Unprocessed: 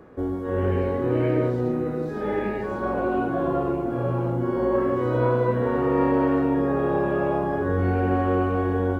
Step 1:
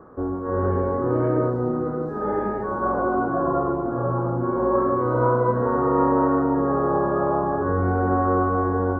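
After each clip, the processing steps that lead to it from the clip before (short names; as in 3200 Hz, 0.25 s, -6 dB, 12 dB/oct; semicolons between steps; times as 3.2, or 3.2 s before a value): resonant high shelf 1800 Hz -13 dB, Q 3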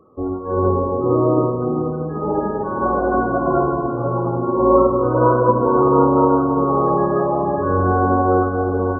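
loudest bins only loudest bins 32; spring tank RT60 3 s, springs 51 ms, chirp 50 ms, DRR 4 dB; upward expander 1.5:1, over -40 dBFS; gain +6.5 dB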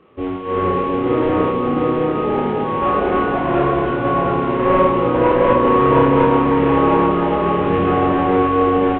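CVSD 16 kbps; doubler 28 ms -3 dB; echo 0.71 s -3.5 dB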